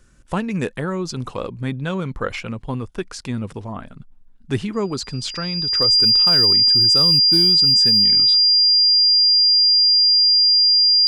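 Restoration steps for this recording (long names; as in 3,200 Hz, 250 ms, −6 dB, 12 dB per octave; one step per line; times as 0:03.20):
clipped peaks rebuilt −9.5 dBFS
notch filter 4,800 Hz, Q 30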